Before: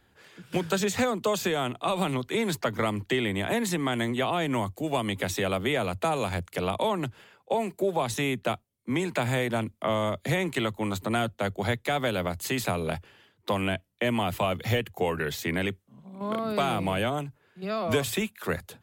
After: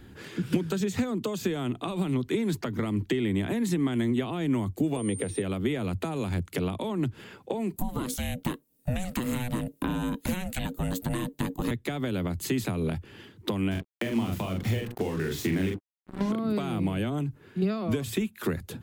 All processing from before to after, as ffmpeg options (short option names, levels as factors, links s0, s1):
-filter_complex "[0:a]asettb=1/sr,asplit=3[s0][s1][s2];[s0]atrim=end=4.964[s3];[s1]atrim=start=4.96:end=5.42,asetpts=PTS-STARTPTS,afade=t=in:d=0.004:c=qsin,afade=t=out:st=0.456:d=0.004:c=qsin,acrossover=split=4000[s4][s5];[s5]acompressor=threshold=0.00355:ratio=4:attack=1:release=60[s6];[s4][s6]amix=inputs=2:normalize=0,equalizer=f=470:w=4.4:g=14.5,aeval=exprs='val(0)+0.0251*sin(2*PI*8900*n/s)':c=same[s7];[s2]atrim=start=5.416[s8];[s3][s7]acrossfade=d=0.004:c1=hsin:c2=qsin[s9];[s9][s8]acrossfade=d=0.004:c1=qsin:c2=hsin,asettb=1/sr,asplit=3[s10][s11][s12];[s10]atrim=end=7.764[s13];[s11]atrim=start=7.76:end=11.71,asetpts=PTS-STARTPTS,afade=t=in:d=0.004:c=qsin,afade=t=out:st=3.946:d=0.004:c=qsin,aemphasis=mode=production:type=50fm,aeval=exprs='val(0)*sin(2*PI*370*n/s)':c=same[s14];[s12]atrim=start=11.706[s15];[s13][s14]acrossfade=d=0.004:c1=hsin:c2=qsin[s16];[s16][s15]acrossfade=d=0.004:c1=qsin:c2=hsin,asettb=1/sr,asplit=3[s17][s18][s19];[s17]atrim=end=13.714[s20];[s18]atrim=start=13.71:end=16.32,asetpts=PTS-STARTPTS,afade=t=in:d=0.004:c=qsin,afade=t=out:st=2.606:d=0.004:c=qsin,bandreject=f=60:t=h:w=6,bandreject=f=120:t=h:w=6,bandreject=f=180:t=h:w=6,bandreject=f=240:t=h:w=6,bandreject=f=300:t=h:w=6,bandreject=f=360:t=h:w=6,bandreject=f=420:t=h:w=6,bandreject=f=480:t=h:w=6,bandreject=f=540:t=h:w=6,acrusher=bits=5:mix=0:aa=0.5,asplit=2[s21][s22];[s22]adelay=43,volume=0.631[s23];[s21][s23]amix=inputs=2:normalize=0,atrim=end_sample=115101[s24];[s19]atrim=start=16.316[s25];[s20][s24]acrossfade=d=0.004:c1=hsin:c2=qsin[s26];[s26][s25]acrossfade=d=0.004:c1=qsin:c2=hsin,acompressor=threshold=0.01:ratio=12,lowshelf=f=440:t=q:w=1.5:g=8.5,volume=2.66"